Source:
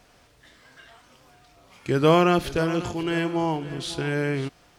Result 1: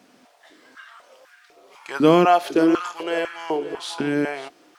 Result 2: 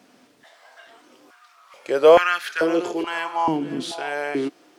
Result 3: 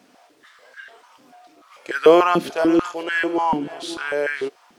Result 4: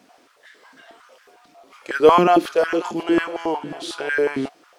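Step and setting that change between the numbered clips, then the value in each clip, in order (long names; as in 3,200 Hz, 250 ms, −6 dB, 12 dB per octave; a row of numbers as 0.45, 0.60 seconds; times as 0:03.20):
high-pass on a step sequencer, speed: 4, 2.3, 6.8, 11 Hertz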